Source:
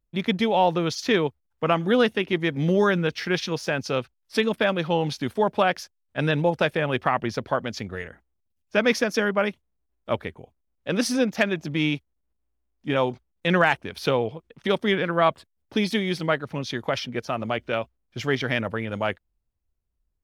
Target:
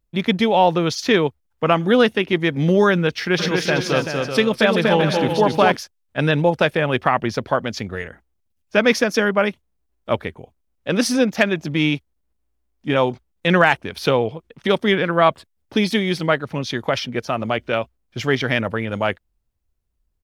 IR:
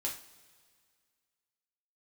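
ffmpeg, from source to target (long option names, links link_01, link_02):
-filter_complex "[0:a]asplit=3[link_01][link_02][link_03];[link_01]afade=type=out:start_time=3.38:duration=0.02[link_04];[link_02]aecho=1:1:240|384|470.4|522.2|553.3:0.631|0.398|0.251|0.158|0.1,afade=type=in:start_time=3.38:duration=0.02,afade=type=out:start_time=5.75:duration=0.02[link_05];[link_03]afade=type=in:start_time=5.75:duration=0.02[link_06];[link_04][link_05][link_06]amix=inputs=3:normalize=0,volume=5dB"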